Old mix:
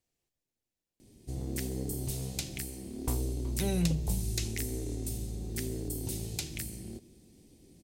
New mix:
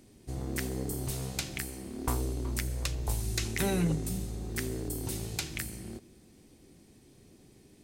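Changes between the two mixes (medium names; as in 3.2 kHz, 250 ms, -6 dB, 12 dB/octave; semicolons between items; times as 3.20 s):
background: entry -1.00 s; master: add peaking EQ 1.3 kHz +12 dB 1.5 oct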